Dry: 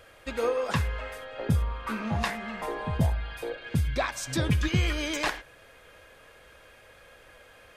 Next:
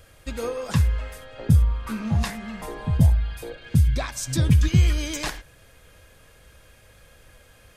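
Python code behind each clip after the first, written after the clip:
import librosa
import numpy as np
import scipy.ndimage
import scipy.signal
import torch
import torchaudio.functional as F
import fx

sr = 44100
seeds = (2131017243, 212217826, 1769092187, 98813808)

y = fx.bass_treble(x, sr, bass_db=13, treble_db=10)
y = F.gain(torch.from_numpy(y), -3.5).numpy()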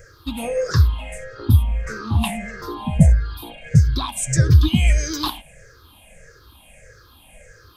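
y = fx.spec_ripple(x, sr, per_octave=0.54, drift_hz=-1.6, depth_db=24)
y = F.gain(torch.from_numpy(y), -1.0).numpy()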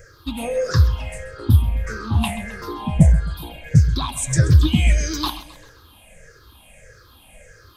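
y = fx.echo_feedback(x, sr, ms=132, feedback_pct=46, wet_db=-16.0)
y = fx.doppler_dist(y, sr, depth_ms=0.13)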